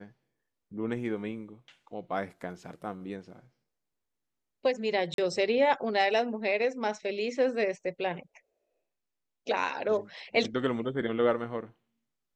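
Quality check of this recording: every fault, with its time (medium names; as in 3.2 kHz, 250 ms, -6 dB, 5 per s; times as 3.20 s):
5.14–5.18 s: dropout 42 ms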